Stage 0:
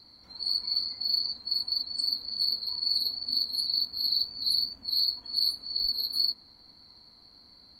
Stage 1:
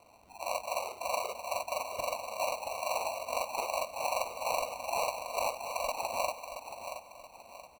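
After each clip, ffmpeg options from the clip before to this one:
-af "acrusher=samples=26:mix=1:aa=0.000001,aecho=1:1:676|1352|2028|2704:0.355|0.135|0.0512|0.0195,volume=0.531"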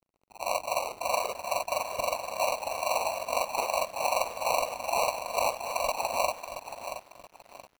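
-af "aeval=exprs='sgn(val(0))*max(abs(val(0))-0.00211,0)':c=same,volume=1.88"

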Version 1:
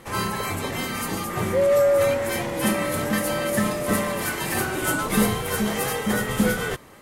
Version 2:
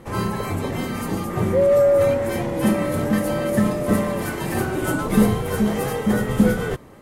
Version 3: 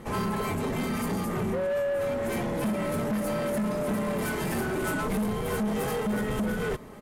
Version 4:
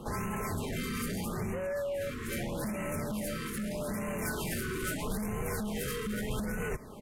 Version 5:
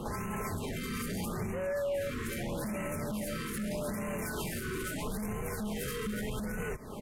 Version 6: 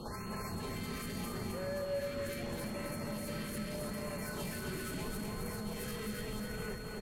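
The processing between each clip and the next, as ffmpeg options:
-af "tiltshelf=f=930:g=6"
-af "acompressor=threshold=0.0794:ratio=3,aecho=1:1:4.7:0.41,asoftclip=type=tanh:threshold=0.0596"
-filter_complex "[0:a]acrossover=split=110|1800|7100[s0][s1][s2][s3];[s1]alimiter=level_in=1.88:limit=0.0631:level=0:latency=1:release=315,volume=0.531[s4];[s0][s4][s2][s3]amix=inputs=4:normalize=0,afftfilt=real='re*(1-between(b*sr/1024,690*pow(4300/690,0.5+0.5*sin(2*PI*0.79*pts/sr))/1.41,690*pow(4300/690,0.5+0.5*sin(2*PI*0.79*pts/sr))*1.41))':imag='im*(1-between(b*sr/1024,690*pow(4300/690,0.5+0.5*sin(2*PI*0.79*pts/sr))/1.41,690*pow(4300/690,0.5+0.5*sin(2*PI*0.79*pts/sr))*1.41))':win_size=1024:overlap=0.75"
-af "alimiter=level_in=2.66:limit=0.0631:level=0:latency=1:release=200,volume=0.376,volume=1.88"
-af "aeval=exprs='val(0)+0.00316*sin(2*PI*4300*n/s)':c=same,aecho=1:1:264|528|792|1056|1320|1584|1848|2112:0.631|0.353|0.198|0.111|0.0621|0.0347|0.0195|0.0109,volume=0.501"

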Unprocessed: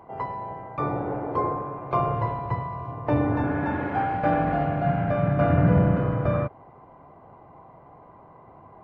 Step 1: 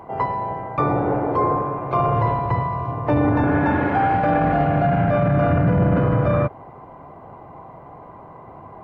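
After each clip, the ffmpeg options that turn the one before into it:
-af "alimiter=limit=0.112:level=0:latency=1:release=20,volume=2.66"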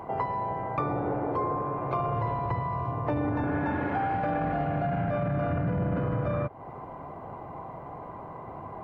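-af "acompressor=threshold=0.0355:ratio=3"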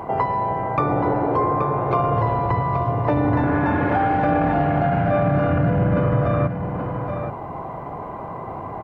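-af "aecho=1:1:827:0.422,volume=2.66"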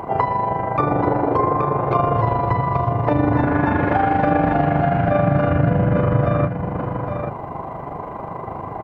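-af "tremolo=f=25:d=0.519,volume=1.58"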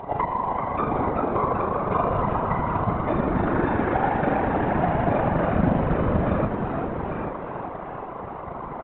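-filter_complex "[0:a]asplit=9[s0][s1][s2][s3][s4][s5][s6][s7][s8];[s1]adelay=386,afreqshift=110,volume=0.422[s9];[s2]adelay=772,afreqshift=220,volume=0.254[s10];[s3]adelay=1158,afreqshift=330,volume=0.151[s11];[s4]adelay=1544,afreqshift=440,volume=0.0912[s12];[s5]adelay=1930,afreqshift=550,volume=0.055[s13];[s6]adelay=2316,afreqshift=660,volume=0.0327[s14];[s7]adelay=2702,afreqshift=770,volume=0.0197[s15];[s8]adelay=3088,afreqshift=880,volume=0.0117[s16];[s0][s9][s10][s11][s12][s13][s14][s15][s16]amix=inputs=9:normalize=0,afftfilt=real='hypot(re,im)*cos(2*PI*random(0))':imag='hypot(re,im)*sin(2*PI*random(1))':win_size=512:overlap=0.75" -ar 8000 -c:a pcm_alaw

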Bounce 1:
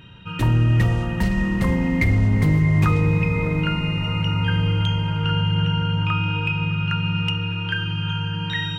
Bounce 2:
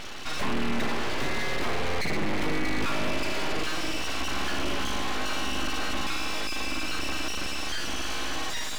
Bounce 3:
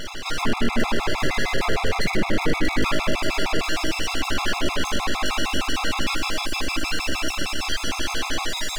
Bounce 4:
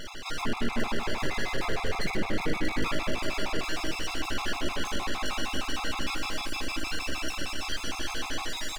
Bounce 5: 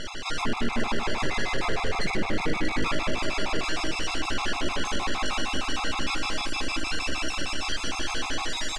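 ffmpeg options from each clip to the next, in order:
-filter_complex "[0:a]asplit=2[s0][s1];[s1]highpass=f=720:p=1,volume=50.1,asoftclip=type=tanh:threshold=0.355[s2];[s0][s2]amix=inputs=2:normalize=0,lowpass=f=1200:p=1,volume=0.501,aeval=exprs='abs(val(0))':c=same,volume=0.422"
-af "afftfilt=real='re*gt(sin(2*PI*6.5*pts/sr)*(1-2*mod(floor(b*sr/1024/680),2)),0)':imag='im*gt(sin(2*PI*6.5*pts/sr)*(1-2*mod(floor(b*sr/1024/680),2)),0)':win_size=1024:overlap=0.75,volume=2.66"
-filter_complex "[0:a]asplit=2[s0][s1];[s1]adelay=344,volume=0.282,highshelf=f=4000:g=-7.74[s2];[s0][s2]amix=inputs=2:normalize=0,volume=0.422"
-filter_complex "[0:a]asplit=2[s0][s1];[s1]alimiter=level_in=1.06:limit=0.0631:level=0:latency=1:release=78,volume=0.944,volume=1[s2];[s0][s2]amix=inputs=2:normalize=0,lowpass=f=9300:w=0.5412,lowpass=f=9300:w=1.3066,volume=0.891"

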